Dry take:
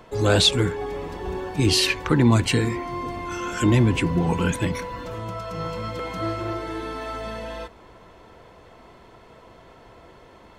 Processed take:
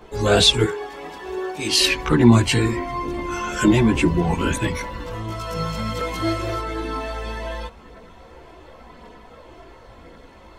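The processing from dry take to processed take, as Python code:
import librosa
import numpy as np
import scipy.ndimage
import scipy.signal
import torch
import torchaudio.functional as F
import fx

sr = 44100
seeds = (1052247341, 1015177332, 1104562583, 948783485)

y = fx.highpass(x, sr, hz=630.0, slope=6, at=(0.64, 1.79))
y = fx.high_shelf(y, sr, hz=3800.0, db=9.5, at=(5.3, 6.6))
y = fx.chorus_voices(y, sr, voices=6, hz=0.23, base_ms=16, depth_ms=2.9, mix_pct=60)
y = y * 10.0 ** (6.0 / 20.0)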